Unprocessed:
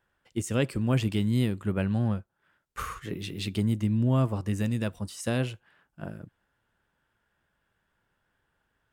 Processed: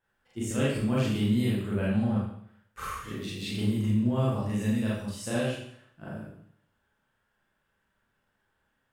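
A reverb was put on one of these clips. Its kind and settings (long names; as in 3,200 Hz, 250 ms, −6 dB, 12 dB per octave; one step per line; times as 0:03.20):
four-comb reverb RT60 0.66 s, combs from 29 ms, DRR −7.5 dB
level −8 dB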